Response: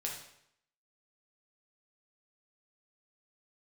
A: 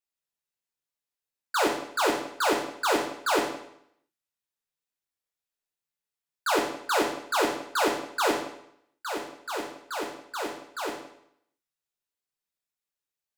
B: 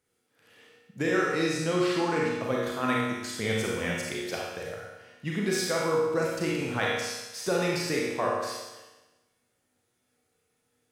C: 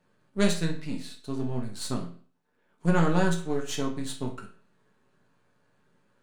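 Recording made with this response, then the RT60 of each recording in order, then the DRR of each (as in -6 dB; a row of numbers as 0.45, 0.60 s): A; 0.75, 1.1, 0.45 s; -2.0, -4.5, 0.5 dB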